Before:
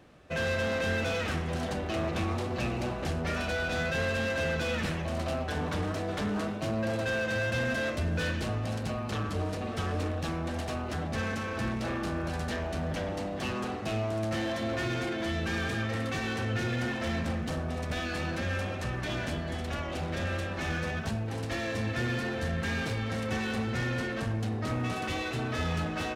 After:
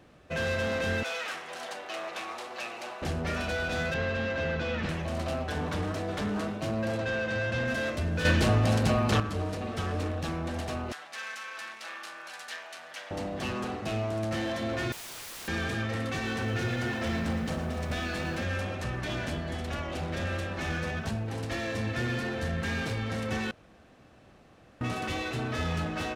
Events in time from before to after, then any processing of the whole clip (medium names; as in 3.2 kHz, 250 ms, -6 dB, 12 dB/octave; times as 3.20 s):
1.03–3.02 s: high-pass 720 Hz
3.94–4.89 s: distance through air 140 m
6.98–7.68 s: distance through air 76 m
8.25–9.20 s: gain +8.5 dB
10.92–13.11 s: high-pass 1.3 kHz
14.92–15.48 s: integer overflow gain 37.5 dB
16.14–18.44 s: bit-crushed delay 113 ms, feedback 80%, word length 9-bit, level -12 dB
23.51–24.81 s: room tone